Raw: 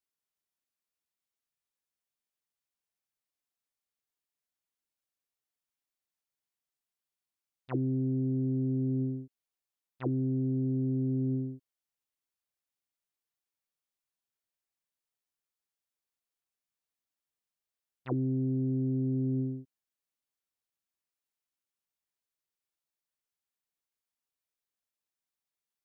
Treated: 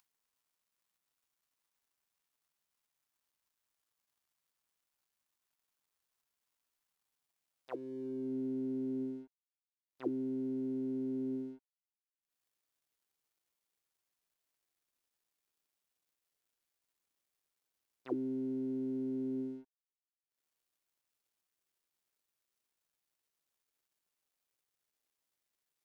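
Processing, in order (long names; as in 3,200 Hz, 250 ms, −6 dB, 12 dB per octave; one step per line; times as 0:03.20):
upward compression, threshold −41 dBFS
high-pass filter sweep 980 Hz → 320 Hz, 0:06.83–0:08.35
dead-zone distortion −59 dBFS
level −7.5 dB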